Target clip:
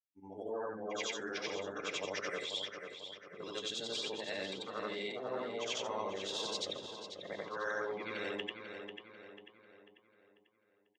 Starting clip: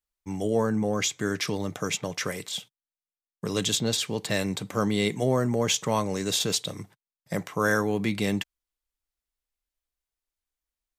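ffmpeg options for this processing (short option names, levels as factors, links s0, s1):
-filter_complex "[0:a]afftfilt=real='re':imag='-im':win_size=8192:overlap=0.75,afftdn=nr=27:nf=-44,areverse,acompressor=threshold=0.0126:ratio=5,areverse,flanger=delay=3.5:depth=7.1:regen=-68:speed=0.88:shape=triangular,acrossover=split=350 5700:gain=0.1 1 0.1[s0][s1][s2];[s0][s1][s2]amix=inputs=3:normalize=0,asplit=2[s3][s4];[s4]adelay=493,lowpass=f=4300:p=1,volume=0.447,asplit=2[s5][s6];[s6]adelay=493,lowpass=f=4300:p=1,volume=0.47,asplit=2[s7][s8];[s8]adelay=493,lowpass=f=4300:p=1,volume=0.47,asplit=2[s9][s10];[s10]adelay=493,lowpass=f=4300:p=1,volume=0.47,asplit=2[s11][s12];[s12]adelay=493,lowpass=f=4300:p=1,volume=0.47,asplit=2[s13][s14];[s14]adelay=493,lowpass=f=4300:p=1,volume=0.47[s15];[s3][s5][s7][s9][s11][s13][s15]amix=inputs=7:normalize=0,volume=2.66"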